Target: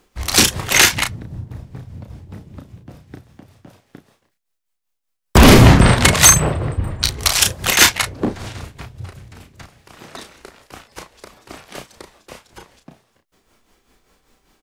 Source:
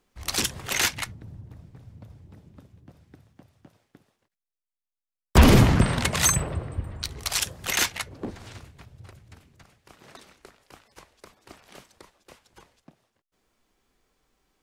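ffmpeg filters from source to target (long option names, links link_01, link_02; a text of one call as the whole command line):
ffmpeg -i in.wav -filter_complex "[0:a]tremolo=f=5.1:d=0.59,asplit=2[link_01][link_02];[link_02]adelay=33,volume=-6dB[link_03];[link_01][link_03]amix=inputs=2:normalize=0,apsyclip=15.5dB,volume=-1.5dB" out.wav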